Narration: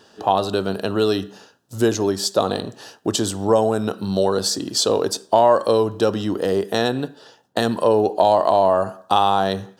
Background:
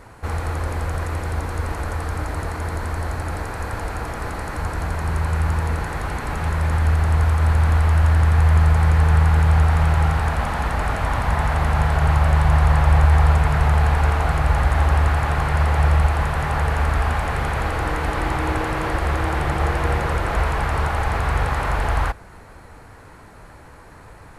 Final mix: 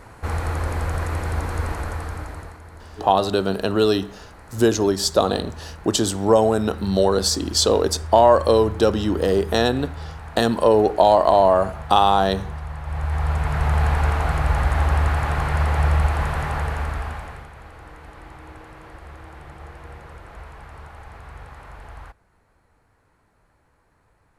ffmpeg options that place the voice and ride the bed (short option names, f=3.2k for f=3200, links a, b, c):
-filter_complex "[0:a]adelay=2800,volume=1dB[a];[1:a]volume=14.5dB,afade=t=out:st=1.61:d=1:silence=0.149624,afade=t=in:st=12.83:d=1.01:silence=0.188365,afade=t=out:st=16.33:d=1.16:silence=0.133352[b];[a][b]amix=inputs=2:normalize=0"